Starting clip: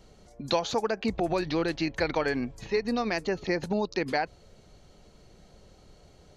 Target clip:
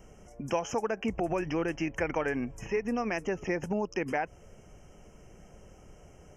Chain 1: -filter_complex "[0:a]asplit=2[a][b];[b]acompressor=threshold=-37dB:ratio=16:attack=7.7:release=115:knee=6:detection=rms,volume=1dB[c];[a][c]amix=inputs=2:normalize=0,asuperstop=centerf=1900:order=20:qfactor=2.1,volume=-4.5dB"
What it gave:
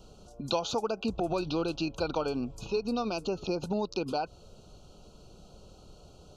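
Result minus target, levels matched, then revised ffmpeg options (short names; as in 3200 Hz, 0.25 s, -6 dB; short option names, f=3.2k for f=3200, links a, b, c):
4000 Hz band +9.5 dB
-filter_complex "[0:a]asplit=2[a][b];[b]acompressor=threshold=-37dB:ratio=16:attack=7.7:release=115:knee=6:detection=rms,volume=1dB[c];[a][c]amix=inputs=2:normalize=0,asuperstop=centerf=4000:order=20:qfactor=2.1,volume=-4.5dB"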